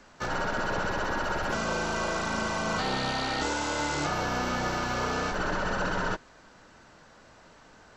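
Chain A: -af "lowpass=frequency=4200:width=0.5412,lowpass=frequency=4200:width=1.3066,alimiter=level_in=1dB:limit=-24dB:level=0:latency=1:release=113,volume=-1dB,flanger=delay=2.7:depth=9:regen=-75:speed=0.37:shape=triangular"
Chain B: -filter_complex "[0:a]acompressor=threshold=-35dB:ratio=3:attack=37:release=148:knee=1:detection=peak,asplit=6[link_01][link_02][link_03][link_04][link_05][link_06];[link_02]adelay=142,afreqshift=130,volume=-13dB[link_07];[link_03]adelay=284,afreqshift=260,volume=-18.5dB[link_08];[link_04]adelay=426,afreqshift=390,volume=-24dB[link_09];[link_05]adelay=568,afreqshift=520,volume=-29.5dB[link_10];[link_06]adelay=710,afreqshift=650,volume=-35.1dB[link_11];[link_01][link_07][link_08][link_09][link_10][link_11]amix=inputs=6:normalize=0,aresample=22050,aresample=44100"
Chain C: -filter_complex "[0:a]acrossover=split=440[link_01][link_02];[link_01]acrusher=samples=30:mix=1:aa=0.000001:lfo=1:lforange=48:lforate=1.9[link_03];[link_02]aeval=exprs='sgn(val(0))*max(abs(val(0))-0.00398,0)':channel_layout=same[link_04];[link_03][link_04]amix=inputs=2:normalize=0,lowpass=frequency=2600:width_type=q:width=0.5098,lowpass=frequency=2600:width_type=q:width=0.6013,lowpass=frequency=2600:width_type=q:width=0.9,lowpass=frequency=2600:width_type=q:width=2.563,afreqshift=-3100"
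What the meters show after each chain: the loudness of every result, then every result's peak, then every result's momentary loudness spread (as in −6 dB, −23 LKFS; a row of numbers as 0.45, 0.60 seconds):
−38.5, −34.0, −28.5 LKFS; −27.0, −21.0, −17.0 dBFS; 1, 21, 2 LU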